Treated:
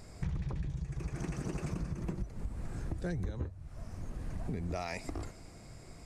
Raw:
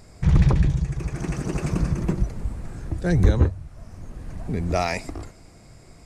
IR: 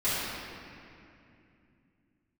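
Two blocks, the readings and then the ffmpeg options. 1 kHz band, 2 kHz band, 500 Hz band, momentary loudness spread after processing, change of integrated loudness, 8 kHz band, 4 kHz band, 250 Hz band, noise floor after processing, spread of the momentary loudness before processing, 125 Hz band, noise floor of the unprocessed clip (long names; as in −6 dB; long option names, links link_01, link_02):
−14.0 dB, −13.0 dB, −14.0 dB, 10 LU, −16.0 dB, −11.0 dB, −13.0 dB, −14.0 dB, −52 dBFS, 20 LU, −15.5 dB, −49 dBFS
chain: -af "acompressor=threshold=-30dB:ratio=10,volume=-3dB"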